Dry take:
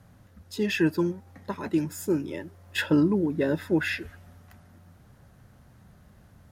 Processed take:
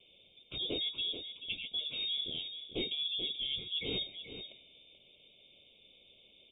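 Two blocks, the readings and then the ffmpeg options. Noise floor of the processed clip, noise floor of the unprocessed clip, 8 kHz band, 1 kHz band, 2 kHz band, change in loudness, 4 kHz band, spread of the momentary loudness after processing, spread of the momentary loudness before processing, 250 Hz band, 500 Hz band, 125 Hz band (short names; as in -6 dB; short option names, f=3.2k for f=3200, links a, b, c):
-64 dBFS, -56 dBFS, under -35 dB, under -20 dB, -14.5 dB, -8.5 dB, +8.0 dB, 11 LU, 16 LU, -23.0 dB, -17.0 dB, -21.0 dB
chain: -filter_complex "[0:a]equalizer=f=66:t=o:w=3:g=-12,bandreject=f=60:t=h:w=6,bandreject=f=120:t=h:w=6,bandreject=f=180:t=h:w=6,bandreject=f=240:t=h:w=6,bandreject=f=300:t=h:w=6,areverse,acompressor=threshold=-34dB:ratio=6,areverse,aexciter=amount=10.5:drive=4:freq=2.5k,aeval=exprs='0.562*(cos(1*acos(clip(val(0)/0.562,-1,1)))-cos(1*PI/2))+0.2*(cos(2*acos(clip(val(0)/0.562,-1,1)))-cos(2*PI/2))+0.0562*(cos(8*acos(clip(val(0)/0.562,-1,1)))-cos(8*PI/2))':c=same,asoftclip=type=tanh:threshold=-11.5dB,asuperstop=centerf=2200:order=20:qfactor=1.4,asplit=2[a][b];[b]aecho=0:1:433:0.316[c];[a][c]amix=inputs=2:normalize=0,lowpass=f=3.1k:t=q:w=0.5098,lowpass=f=3.1k:t=q:w=0.6013,lowpass=f=3.1k:t=q:w=0.9,lowpass=f=3.1k:t=q:w=2.563,afreqshift=-3700,volume=-1dB"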